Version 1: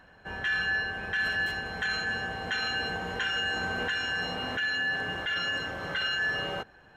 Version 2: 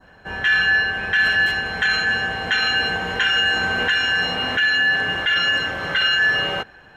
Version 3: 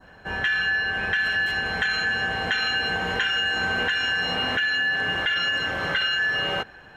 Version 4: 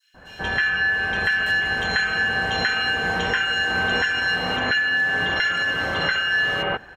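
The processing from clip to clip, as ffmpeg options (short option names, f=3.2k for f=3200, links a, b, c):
-af "adynamicequalizer=threshold=0.00794:dfrequency=2400:dqfactor=0.75:tfrequency=2400:tqfactor=0.75:attack=5:release=100:ratio=0.375:range=3:mode=boostabove:tftype=bell,volume=7dB"
-af "acompressor=threshold=-21dB:ratio=6"
-filter_complex "[0:a]acrossover=split=3000[a][b];[a]adelay=140[c];[c][b]amix=inputs=2:normalize=0,volume=3.5dB"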